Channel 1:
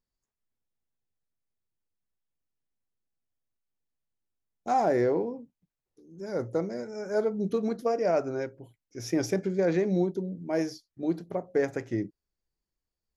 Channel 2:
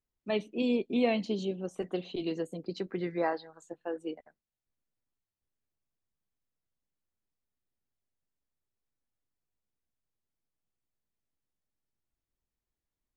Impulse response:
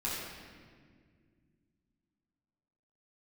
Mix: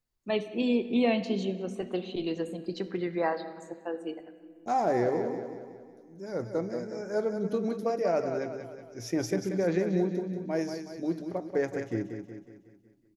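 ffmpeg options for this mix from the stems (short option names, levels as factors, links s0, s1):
-filter_complex "[0:a]volume=0.75,asplit=3[s0][s1][s2];[s1]volume=0.0668[s3];[s2]volume=0.422[s4];[1:a]volume=1.12,asplit=3[s5][s6][s7];[s6]volume=0.178[s8];[s7]volume=0.075[s9];[2:a]atrim=start_sample=2205[s10];[s3][s8]amix=inputs=2:normalize=0[s11];[s11][s10]afir=irnorm=-1:irlink=0[s12];[s4][s9]amix=inputs=2:normalize=0,aecho=0:1:184|368|552|736|920|1104|1288:1|0.5|0.25|0.125|0.0625|0.0312|0.0156[s13];[s0][s5][s12][s13]amix=inputs=4:normalize=0"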